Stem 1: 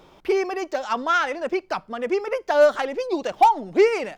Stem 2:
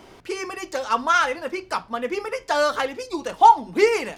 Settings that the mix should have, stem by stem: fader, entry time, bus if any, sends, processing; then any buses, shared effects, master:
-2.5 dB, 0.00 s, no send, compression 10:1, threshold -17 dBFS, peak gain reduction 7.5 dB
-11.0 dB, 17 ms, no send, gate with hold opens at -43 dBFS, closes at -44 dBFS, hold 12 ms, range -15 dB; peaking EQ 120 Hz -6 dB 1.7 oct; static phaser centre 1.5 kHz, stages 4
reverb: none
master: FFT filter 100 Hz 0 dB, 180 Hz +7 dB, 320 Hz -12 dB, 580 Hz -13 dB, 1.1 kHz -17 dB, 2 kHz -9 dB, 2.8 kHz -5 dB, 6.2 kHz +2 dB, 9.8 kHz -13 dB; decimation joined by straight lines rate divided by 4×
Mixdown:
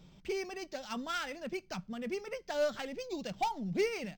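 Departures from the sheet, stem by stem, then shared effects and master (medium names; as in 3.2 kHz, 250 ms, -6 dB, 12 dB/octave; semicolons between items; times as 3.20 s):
stem 1: missing compression 10:1, threshold -17 dBFS, peak gain reduction 7.5 dB; stem 2 -11.0 dB -> -17.5 dB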